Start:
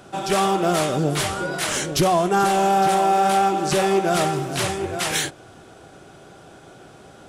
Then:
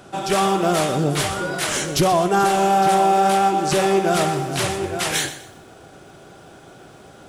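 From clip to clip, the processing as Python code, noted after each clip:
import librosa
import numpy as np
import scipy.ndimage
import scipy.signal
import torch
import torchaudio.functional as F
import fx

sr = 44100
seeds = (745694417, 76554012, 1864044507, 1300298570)

y = fx.echo_crushed(x, sr, ms=124, feedback_pct=35, bits=8, wet_db=-13)
y = y * 10.0 ** (1.0 / 20.0)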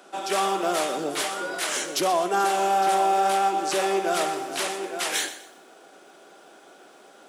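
y = scipy.signal.sosfilt(scipy.signal.bessel(8, 370.0, 'highpass', norm='mag', fs=sr, output='sos'), x)
y = y * 10.0 ** (-4.0 / 20.0)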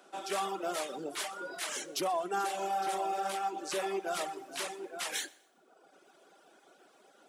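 y = fx.dereverb_blind(x, sr, rt60_s=1.1)
y = y * 10.0 ** (-8.5 / 20.0)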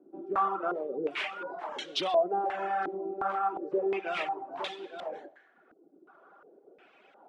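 y = fx.filter_held_lowpass(x, sr, hz=2.8, low_hz=320.0, high_hz=3500.0)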